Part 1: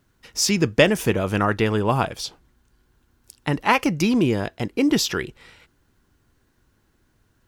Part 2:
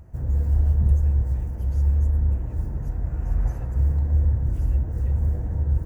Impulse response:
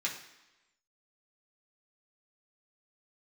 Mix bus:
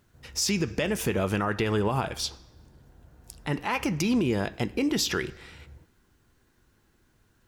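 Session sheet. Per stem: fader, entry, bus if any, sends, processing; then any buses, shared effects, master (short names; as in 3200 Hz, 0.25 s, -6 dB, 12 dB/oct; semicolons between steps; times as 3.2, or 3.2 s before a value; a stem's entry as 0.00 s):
-1.5 dB, 0.00 s, send -14.5 dB, compressor, threshold -19 dBFS, peak gain reduction 9.5 dB
-17.0 dB, 0.00 s, no send, HPF 250 Hz 6 dB/oct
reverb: on, RT60 1.0 s, pre-delay 3 ms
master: limiter -16.5 dBFS, peak gain reduction 8.5 dB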